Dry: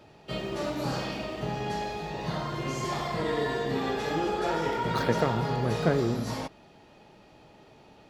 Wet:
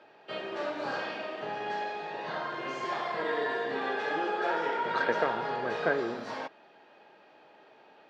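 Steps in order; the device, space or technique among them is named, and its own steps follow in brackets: tin-can telephone (band-pass 430–3200 Hz; small resonant body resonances 1.6 kHz, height 12 dB, ringing for 40 ms)

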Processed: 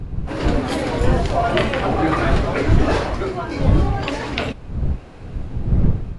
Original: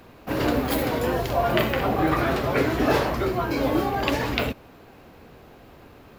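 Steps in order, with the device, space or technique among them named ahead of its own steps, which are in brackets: smartphone video outdoors (wind noise 100 Hz -22 dBFS; level rider gain up to 8 dB; trim -1 dB; AAC 48 kbps 22.05 kHz)

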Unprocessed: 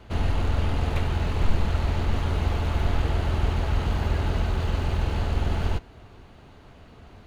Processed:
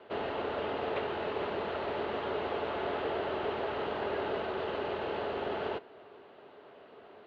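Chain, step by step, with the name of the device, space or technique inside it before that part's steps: phone earpiece (cabinet simulation 380–3400 Hz, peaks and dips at 410 Hz +9 dB, 600 Hz +5 dB, 2.3 kHz -4 dB); trim -2 dB

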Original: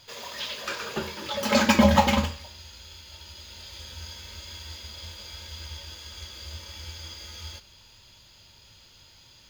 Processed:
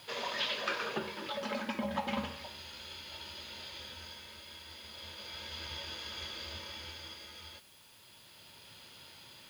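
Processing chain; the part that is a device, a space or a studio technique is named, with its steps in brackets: medium wave at night (band-pass 160–3800 Hz; compression 6:1, threshold -30 dBFS, peak gain reduction 15.5 dB; tremolo 0.33 Hz, depth 62%; whistle 10 kHz -72 dBFS; white noise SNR 22 dB); trim +3.5 dB

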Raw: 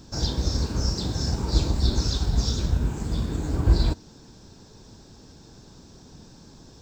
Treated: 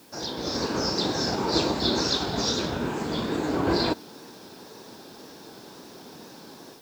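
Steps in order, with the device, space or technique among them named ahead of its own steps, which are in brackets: dictaphone (band-pass 330–4100 Hz; level rider gain up to 9.5 dB; wow and flutter; white noise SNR 28 dB)

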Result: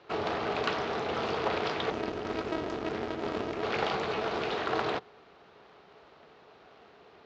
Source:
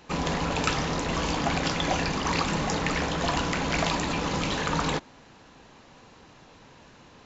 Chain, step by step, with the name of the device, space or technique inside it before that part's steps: 1.90–3.63 s: graphic EQ 125/500/1000/2000/4000 Hz +9/-10/-9/-6/-11 dB; ring modulator pedal into a guitar cabinet (polarity switched at an audio rate 160 Hz; cabinet simulation 100–4500 Hz, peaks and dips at 110 Hz -7 dB, 290 Hz -4 dB, 430 Hz +9 dB, 720 Hz +6 dB, 1.3 kHz +4 dB); trim -6 dB

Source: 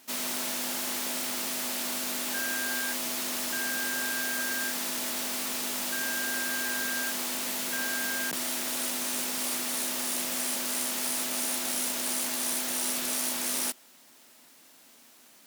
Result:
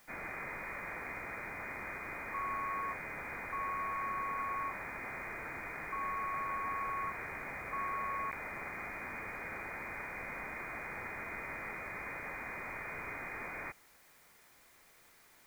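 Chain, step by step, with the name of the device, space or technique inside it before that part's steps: scrambled radio voice (band-pass 350–2700 Hz; frequency inversion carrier 2.7 kHz; white noise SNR 24 dB); trim -2.5 dB

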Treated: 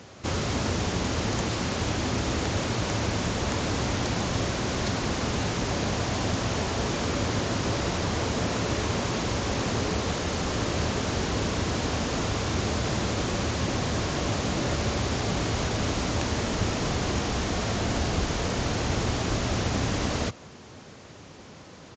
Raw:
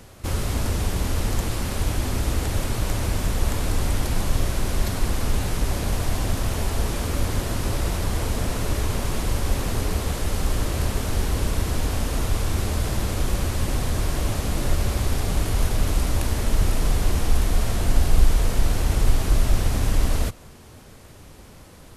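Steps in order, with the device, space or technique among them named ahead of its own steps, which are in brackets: Bluetooth headset (high-pass 120 Hz 12 dB/octave; resampled via 16 kHz; trim +2 dB; SBC 64 kbps 16 kHz)

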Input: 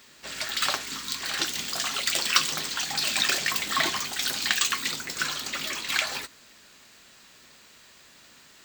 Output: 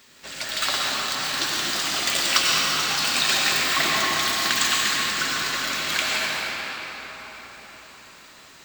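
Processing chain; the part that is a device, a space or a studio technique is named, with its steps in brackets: cathedral (reverberation RT60 5.2 s, pre-delay 85 ms, DRR -5 dB)

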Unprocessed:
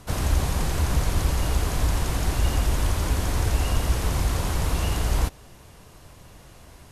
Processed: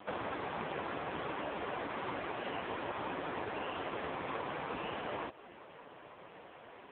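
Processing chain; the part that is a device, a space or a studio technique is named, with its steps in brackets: 3.06–4.73 s: dynamic bell 9.9 kHz, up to -3 dB, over -56 dBFS, Q 2.7; voicemail (band-pass 330–2600 Hz; compression 8:1, threshold -37 dBFS, peak gain reduction 7.5 dB; trim +5.5 dB; AMR-NB 5.15 kbps 8 kHz)

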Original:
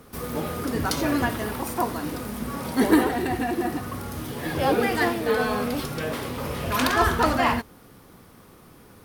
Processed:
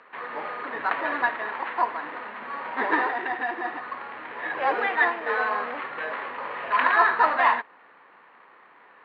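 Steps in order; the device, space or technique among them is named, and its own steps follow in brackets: toy sound module (decimation joined by straight lines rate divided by 8×; class-D stage that switches slowly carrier 16 kHz; cabinet simulation 740–3800 Hz, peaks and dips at 990 Hz +6 dB, 1.8 kHz +8 dB, 3.4 kHz -5 dB); trim +1.5 dB

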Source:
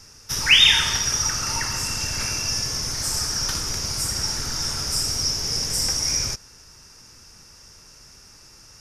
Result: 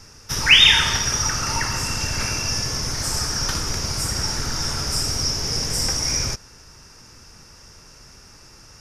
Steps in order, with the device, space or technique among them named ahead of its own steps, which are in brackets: behind a face mask (treble shelf 3.5 kHz -7 dB); trim +5 dB

